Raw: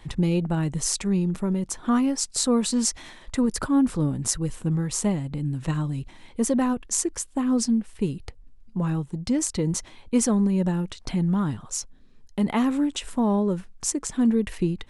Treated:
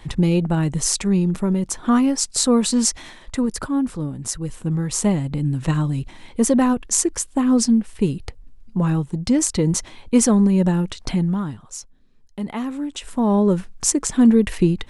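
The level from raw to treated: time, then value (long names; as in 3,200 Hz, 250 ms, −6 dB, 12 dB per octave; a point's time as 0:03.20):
0:02.87 +5 dB
0:04.12 −3 dB
0:05.17 +6 dB
0:11.10 +6 dB
0:11.59 −4 dB
0:12.79 −4 dB
0:13.48 +7.5 dB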